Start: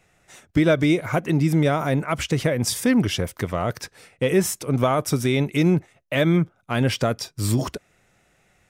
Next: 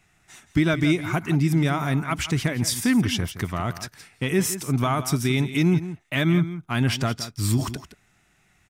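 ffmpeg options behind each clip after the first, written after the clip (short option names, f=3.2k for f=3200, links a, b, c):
-af "equalizer=f=520:w=2.6:g=-15,aecho=1:1:169:0.224"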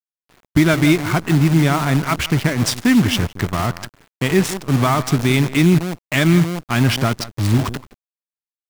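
-af "adynamicsmooth=sensitivity=6.5:basefreq=620,acrusher=bits=6:dc=4:mix=0:aa=0.000001,volume=6.5dB"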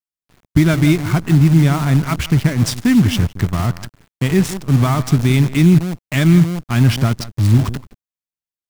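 -af "bass=f=250:g=9,treble=f=4k:g=2,volume=-3.5dB"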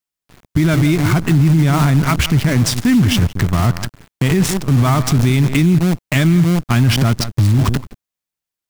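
-af "alimiter=level_in=12.5dB:limit=-1dB:release=50:level=0:latency=1,volume=-5dB"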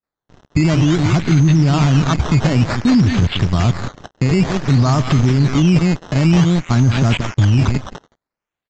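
-filter_complex "[0:a]acrossover=split=1600|5100[a][b][c];[c]adelay=30[d];[b]adelay=210[e];[a][e][d]amix=inputs=3:normalize=0,acrusher=samples=13:mix=1:aa=0.000001:lfo=1:lforange=13:lforate=0.54,aresample=16000,aresample=44100"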